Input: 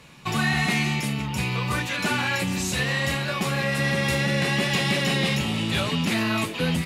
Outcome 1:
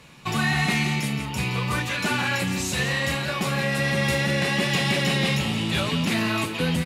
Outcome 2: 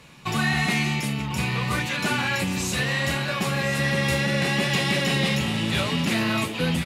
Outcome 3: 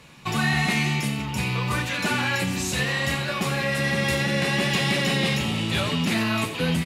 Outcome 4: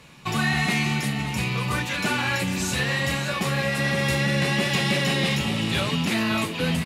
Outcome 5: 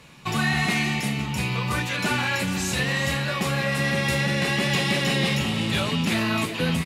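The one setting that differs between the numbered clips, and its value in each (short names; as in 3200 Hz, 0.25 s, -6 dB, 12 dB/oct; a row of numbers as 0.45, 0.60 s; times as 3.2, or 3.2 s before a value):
echo, time: 169, 1046, 89, 570, 368 ms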